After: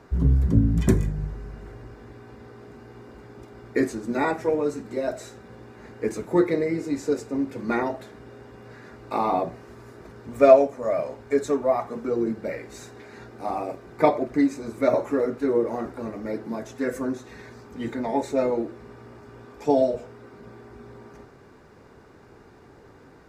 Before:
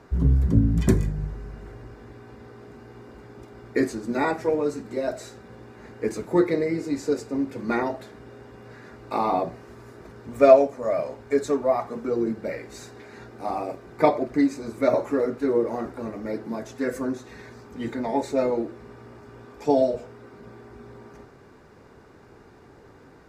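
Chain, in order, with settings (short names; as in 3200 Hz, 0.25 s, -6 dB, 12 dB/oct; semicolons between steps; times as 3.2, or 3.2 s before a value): dynamic EQ 4600 Hz, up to -5 dB, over -60 dBFS, Q 5.8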